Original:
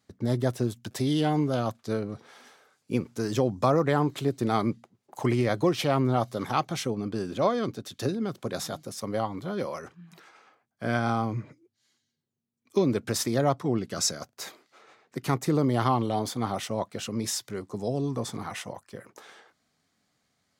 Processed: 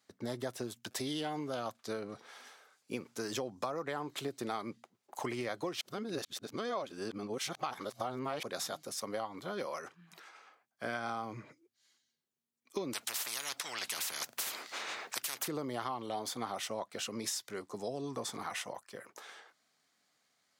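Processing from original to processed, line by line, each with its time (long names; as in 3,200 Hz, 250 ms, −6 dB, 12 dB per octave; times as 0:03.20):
0:05.81–0:08.43: reverse
0:12.93–0:15.48: every bin compressed towards the loudest bin 10 to 1
whole clip: high-pass filter 250 Hz 6 dB per octave; low-shelf EQ 420 Hz −8.5 dB; downward compressor 6 to 1, threshold −34 dBFS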